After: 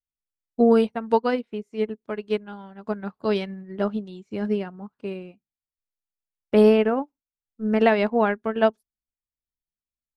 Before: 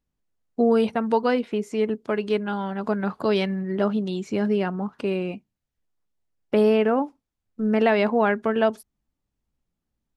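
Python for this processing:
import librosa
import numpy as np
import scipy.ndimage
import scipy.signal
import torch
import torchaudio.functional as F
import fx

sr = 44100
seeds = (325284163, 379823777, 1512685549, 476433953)

y = fx.low_shelf(x, sr, hz=90.0, db=8.0)
y = fx.upward_expand(y, sr, threshold_db=-35.0, expansion=2.5)
y = F.gain(torch.from_numpy(y), 3.5).numpy()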